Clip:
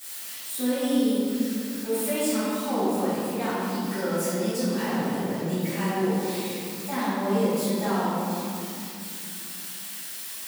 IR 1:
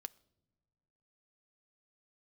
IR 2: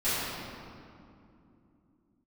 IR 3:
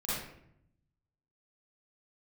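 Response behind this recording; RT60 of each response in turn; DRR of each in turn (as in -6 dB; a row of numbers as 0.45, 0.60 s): 2; not exponential, 2.7 s, 0.70 s; 12.5, -17.5, -10.5 dB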